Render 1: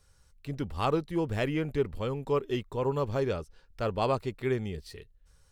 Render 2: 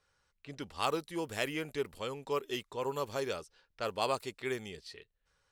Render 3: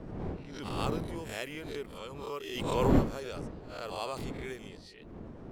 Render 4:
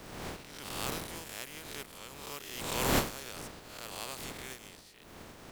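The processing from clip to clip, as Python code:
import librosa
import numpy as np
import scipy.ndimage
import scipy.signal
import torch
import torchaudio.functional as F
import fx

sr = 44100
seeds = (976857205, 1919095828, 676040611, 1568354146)

y1 = fx.env_lowpass(x, sr, base_hz=2300.0, full_db=-25.5)
y1 = fx.riaa(y1, sr, side='recording')
y1 = y1 * 10.0 ** (-3.0 / 20.0)
y2 = fx.spec_swells(y1, sr, rise_s=0.45)
y2 = fx.dmg_wind(y2, sr, seeds[0], corner_hz=320.0, level_db=-31.0)
y2 = fx.pre_swell(y2, sr, db_per_s=41.0)
y2 = y2 * 10.0 ** (-7.0 / 20.0)
y3 = fx.spec_flatten(y2, sr, power=0.4)
y3 = y3 * 10.0 ** (-4.5 / 20.0)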